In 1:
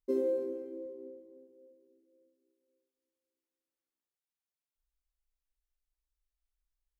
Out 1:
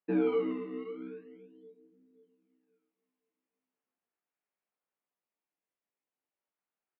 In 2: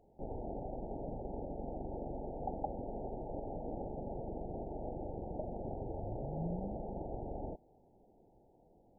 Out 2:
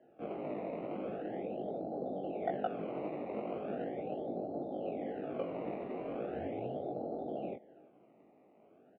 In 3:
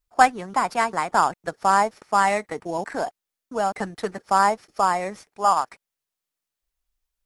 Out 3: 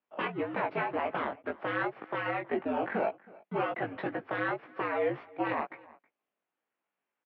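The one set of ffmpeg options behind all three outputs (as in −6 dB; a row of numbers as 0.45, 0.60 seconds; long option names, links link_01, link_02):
-filter_complex "[0:a]equalizer=frequency=810:width=1.5:gain=2,aeval=exprs='1*(cos(1*acos(clip(val(0)/1,-1,1)))-cos(1*PI/2))+0.0224*(cos(7*acos(clip(val(0)/1,-1,1)))-cos(7*PI/2))+0.0891*(cos(8*acos(clip(val(0)/1,-1,1)))-cos(8*PI/2))':channel_layout=same,asplit=2[link_01][link_02];[link_02]acrusher=samples=18:mix=1:aa=0.000001:lfo=1:lforange=18:lforate=0.39,volume=-7.5dB[link_03];[link_01][link_03]amix=inputs=2:normalize=0,afftfilt=real='re*lt(hypot(re,im),0.794)':imag='im*lt(hypot(re,im),0.794)':win_size=1024:overlap=0.75,acompressor=threshold=-24dB:ratio=8,alimiter=limit=-21.5dB:level=0:latency=1:release=31,asplit=2[link_04][link_05];[link_05]adelay=320.7,volume=-22dB,highshelf=frequency=4000:gain=-7.22[link_06];[link_04][link_06]amix=inputs=2:normalize=0,acontrast=56,flanger=delay=18:depth=2.5:speed=1.9,highpass=frequency=280:width_type=q:width=0.5412,highpass=frequency=280:width_type=q:width=1.307,lowpass=frequency=2900:width_type=q:width=0.5176,lowpass=frequency=2900:width_type=q:width=0.7071,lowpass=frequency=2900:width_type=q:width=1.932,afreqshift=-74"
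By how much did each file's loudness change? +2.5, +3.0, −10.5 LU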